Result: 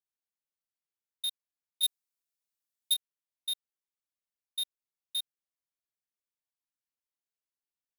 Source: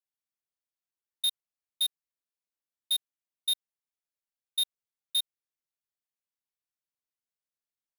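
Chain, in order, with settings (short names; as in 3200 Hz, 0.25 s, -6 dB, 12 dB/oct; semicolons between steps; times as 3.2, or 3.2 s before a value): 1.83–2.94 high shelf 3100 Hz +10.5 dB; gain -5.5 dB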